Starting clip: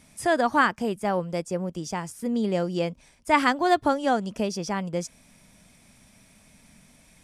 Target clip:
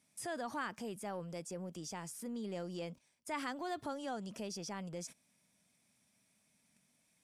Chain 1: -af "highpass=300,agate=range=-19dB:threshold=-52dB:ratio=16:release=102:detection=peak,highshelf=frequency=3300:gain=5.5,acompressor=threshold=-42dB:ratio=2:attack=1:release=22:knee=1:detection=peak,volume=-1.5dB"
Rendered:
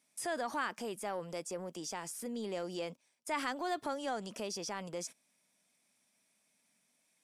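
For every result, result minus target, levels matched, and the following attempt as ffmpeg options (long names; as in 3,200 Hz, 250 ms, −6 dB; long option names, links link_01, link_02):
125 Hz band −6.5 dB; downward compressor: peak gain reduction −4 dB
-af "highpass=120,agate=range=-19dB:threshold=-52dB:ratio=16:release=102:detection=peak,highshelf=frequency=3300:gain=5.5,acompressor=threshold=-42dB:ratio=2:attack=1:release=22:knee=1:detection=peak,volume=-1.5dB"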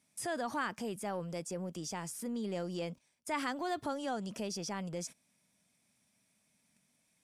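downward compressor: peak gain reduction −4 dB
-af "highpass=120,agate=range=-19dB:threshold=-52dB:ratio=16:release=102:detection=peak,highshelf=frequency=3300:gain=5.5,acompressor=threshold=-50.5dB:ratio=2:attack=1:release=22:knee=1:detection=peak,volume=-1.5dB"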